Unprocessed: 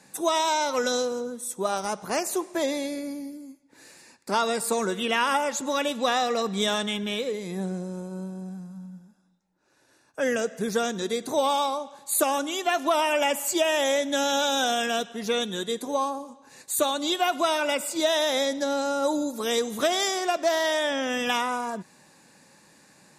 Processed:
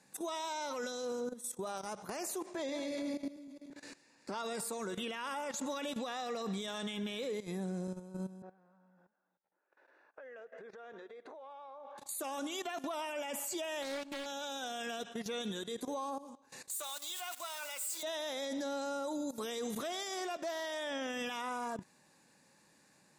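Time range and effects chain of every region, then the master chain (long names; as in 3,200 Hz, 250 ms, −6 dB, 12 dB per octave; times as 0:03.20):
0:02.46–0:04.38: feedback delay that plays each chunk backwards 113 ms, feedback 62%, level −9.5 dB + low-pass filter 6,800 Hz
0:08.42–0:11.98: Chebyshev band-pass filter 470–1,900 Hz + downward compressor 4 to 1, threshold −43 dBFS
0:13.82–0:14.26: power curve on the samples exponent 1.4 + highs frequency-modulated by the lows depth 0.37 ms
0:16.71–0:18.03: spike at every zero crossing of −23 dBFS + high-pass filter 940 Hz + parametric band 7,800 Hz +5 dB 0.38 octaves
whole clip: output level in coarse steps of 17 dB; brickwall limiter −32 dBFS; level +1 dB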